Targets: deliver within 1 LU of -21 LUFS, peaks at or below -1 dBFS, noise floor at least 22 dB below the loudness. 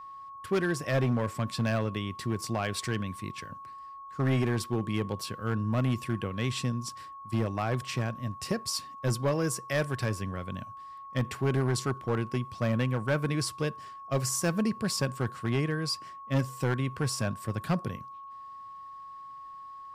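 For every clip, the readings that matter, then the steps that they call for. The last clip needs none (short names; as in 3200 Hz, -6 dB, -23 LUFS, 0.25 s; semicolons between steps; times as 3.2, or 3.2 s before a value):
clipped 1.1%; flat tops at -21.0 dBFS; steady tone 1100 Hz; tone level -42 dBFS; loudness -31.0 LUFS; peak -21.0 dBFS; loudness target -21.0 LUFS
-> clip repair -21 dBFS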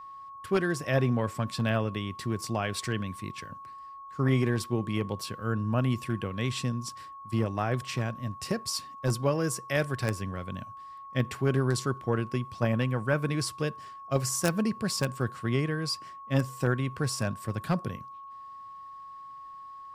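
clipped 0.0%; steady tone 1100 Hz; tone level -42 dBFS
-> notch 1100 Hz, Q 30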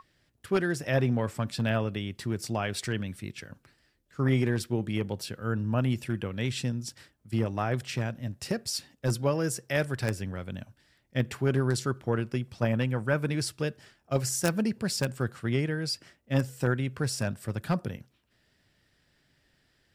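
steady tone none; loudness -30.5 LUFS; peak -11.5 dBFS; loudness target -21.0 LUFS
-> gain +9.5 dB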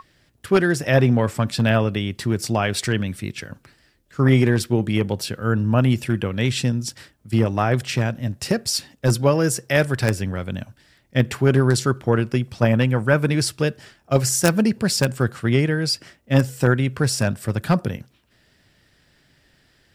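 loudness -21.0 LUFS; peak -2.0 dBFS; noise floor -61 dBFS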